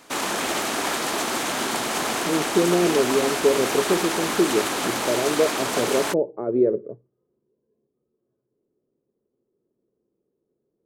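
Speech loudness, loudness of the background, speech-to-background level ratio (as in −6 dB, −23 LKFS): −23.5 LKFS, −24.5 LKFS, 1.0 dB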